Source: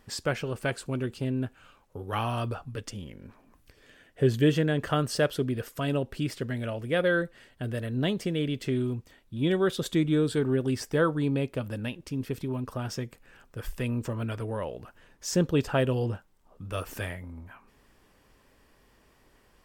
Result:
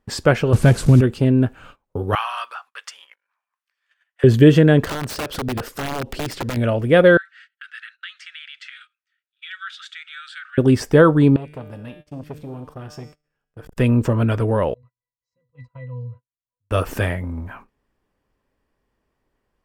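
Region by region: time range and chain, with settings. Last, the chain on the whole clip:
0.53–1.01 s: one-bit delta coder 64 kbps, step -40.5 dBFS + tone controls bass +13 dB, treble +6 dB
2.15–4.24 s: high-pass 1.1 kHz 24 dB/octave + treble shelf 7.8 kHz -7 dB
4.84–6.57 s: peaking EQ 4.9 kHz +4.5 dB 0.84 oct + compression 12:1, threshold -33 dBFS + integer overflow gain 31.5 dB
7.17–10.58 s: steep high-pass 1.3 kHz 96 dB/octave + compression 2.5:1, threshold -41 dBFS + distance through air 120 m
11.36–13.77 s: feedback comb 150 Hz, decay 1.1 s, mix 80% + transformer saturation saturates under 660 Hz
14.74–16.71 s: amplifier tone stack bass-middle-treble 10-0-10 + pitch-class resonator B, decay 0.21 s
whole clip: gate -54 dBFS, range -24 dB; treble shelf 2.3 kHz -8.5 dB; loudness maximiser +15 dB; trim -1 dB

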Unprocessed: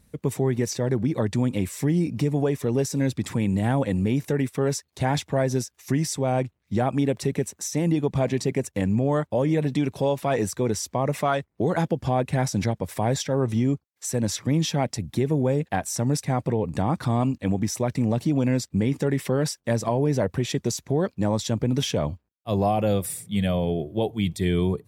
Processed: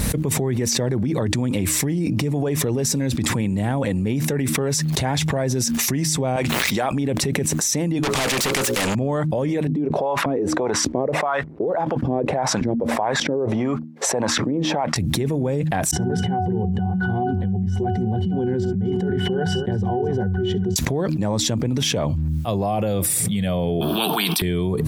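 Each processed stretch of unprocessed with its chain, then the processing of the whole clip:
6.36–6.92 s: high-pass 1.1 kHz 6 dB/octave + swell ahead of each attack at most 110 dB/s
8.03–8.95 s: hum notches 60/120/180/240/300/360/420/480/540 Hz + overdrive pedal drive 27 dB, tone 6.5 kHz, clips at -12 dBFS + spectrum-flattening compressor 2:1
9.67–14.96 s: compression 2:1, threshold -27 dBFS + LFO band-pass saw up 1.7 Hz 230–1500 Hz
15.91–20.76 s: compressor with a negative ratio -27 dBFS + pitch-class resonator F#, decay 0.28 s + multi-tap echo 64/258 ms -19/-20 dB
23.81–24.42 s: steep high-pass 170 Hz 72 dB/octave + static phaser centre 2 kHz, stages 6 + spectrum-flattening compressor 4:1
whole clip: de-hum 77.65 Hz, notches 4; peak limiter -19 dBFS; level flattener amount 100%; trim +2.5 dB

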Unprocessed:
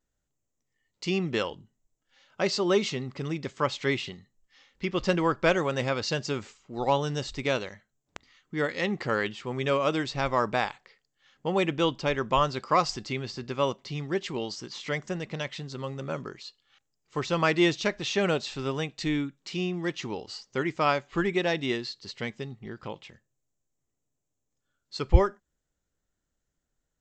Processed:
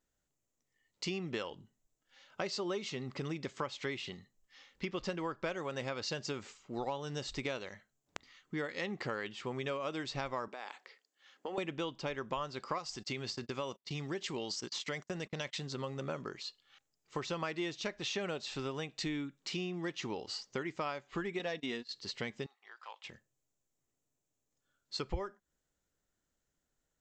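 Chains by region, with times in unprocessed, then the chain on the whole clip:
10.48–11.58 s: high-pass 260 Hz 24 dB/octave + compression 8:1, threshold -34 dBFS
12.78–15.66 s: gate -42 dBFS, range -34 dB + treble shelf 5.2 kHz +8 dB + compression 1.5:1, threshold -34 dBFS
21.39–21.91 s: gate -35 dBFS, range -23 dB + comb 4.2 ms, depth 46%
22.46–23.04 s: ladder high-pass 760 Hz, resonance 30% + transformer saturation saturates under 990 Hz
whole clip: bass shelf 160 Hz -6 dB; compression 6:1, threshold -35 dBFS

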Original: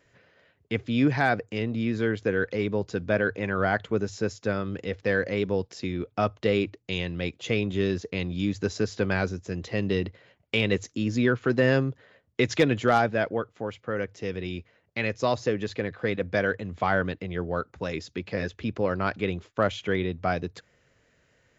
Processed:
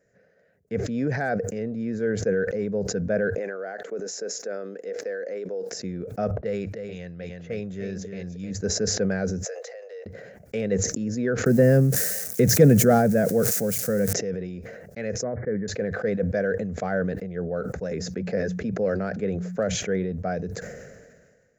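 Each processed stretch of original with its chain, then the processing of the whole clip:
3.38–5.72 s: high-pass 300 Hz 24 dB/octave + compression 5:1, threshold -28 dBFS
6.31–8.51 s: level-controlled noise filter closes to 550 Hz, open at -24 dBFS + peaking EQ 300 Hz -8 dB 2.4 oct + delay 308 ms -7 dB
9.45–10.06 s: Chebyshev high-pass 480 Hz, order 6 + compression 3:1, threshold -39 dBFS
11.46–14.13 s: zero-crossing glitches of -28.5 dBFS + peaking EQ 150 Hz +13 dB 2.1 oct + tape noise reduction on one side only encoder only
15.23–15.68 s: brick-wall FIR low-pass 2.3 kHz + peaking EQ 710 Hz -8 dB 1.4 oct
17.91–19.75 s: hum notches 60/120/180 Hz + three bands compressed up and down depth 70%
whole clip: FFT filter 120 Hz 0 dB, 190 Hz +10 dB, 320 Hz -1 dB, 470 Hz +11 dB, 720 Hz +5 dB, 1 kHz -11 dB, 1.6 kHz +4 dB, 3.2 kHz -14 dB, 6 kHz +4 dB; decay stretcher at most 35 dB/s; trim -7.5 dB

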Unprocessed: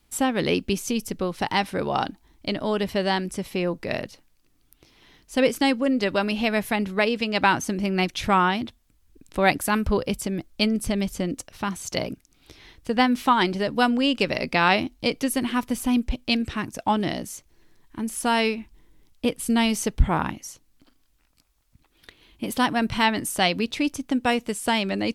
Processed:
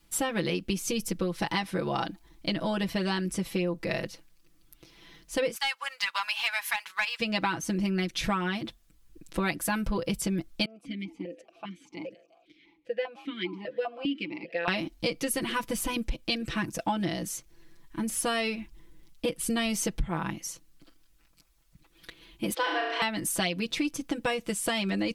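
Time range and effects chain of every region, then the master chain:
5.55–7.20 s: Chebyshev high-pass 910 Hz, order 4 + waveshaping leveller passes 1
10.65–14.68 s: frequency-shifting echo 177 ms, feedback 54%, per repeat +55 Hz, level -21.5 dB + stepped vowel filter 5 Hz
22.54–23.02 s: steep high-pass 310 Hz 96 dB/octave + distance through air 150 m + flutter echo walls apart 6.1 m, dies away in 0.76 s
whole clip: peaking EQ 800 Hz -3 dB 0.77 oct; comb 6 ms, depth 96%; compression, threshold -24 dBFS; trim -1.5 dB

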